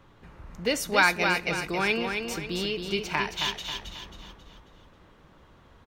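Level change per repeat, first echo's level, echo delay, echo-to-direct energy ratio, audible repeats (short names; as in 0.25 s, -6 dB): -7.5 dB, -5.5 dB, 0.27 s, -4.5 dB, 4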